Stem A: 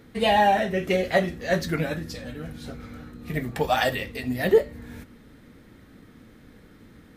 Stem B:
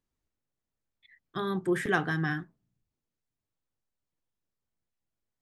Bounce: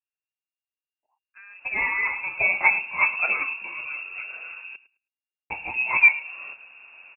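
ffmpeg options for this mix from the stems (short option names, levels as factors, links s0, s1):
-filter_complex "[0:a]bandreject=f=830:w=16,adelay=1500,volume=1.26,asplit=3[s0][s1][s2];[s0]atrim=end=4.76,asetpts=PTS-STARTPTS,afade=t=out:st=4.756:d=0.004:c=hsin[s3];[s1]atrim=start=4.76:end=5.5,asetpts=PTS-STARTPTS,volume=0[s4];[s2]atrim=start=5.5,asetpts=PTS-STARTPTS,afade=t=in:d=0.004:c=hsin[s5];[s3][s4][s5]concat=n=3:v=0:a=1,asplit=2[s6][s7];[s7]volume=0.126[s8];[1:a]equalizer=f=1200:w=3.3:g=6,asoftclip=type=tanh:threshold=0.0708,volume=0.168,asplit=2[s9][s10];[s10]apad=whole_len=381922[s11];[s6][s11]sidechaincompress=threshold=0.00316:ratio=8:attack=6.3:release=138[s12];[s8]aecho=0:1:106|212|318:1|0.16|0.0256[s13];[s12][s9][s13]amix=inputs=3:normalize=0,lowpass=f=2400:t=q:w=0.5098,lowpass=f=2400:t=q:w=0.6013,lowpass=f=2400:t=q:w=0.9,lowpass=f=2400:t=q:w=2.563,afreqshift=-2800"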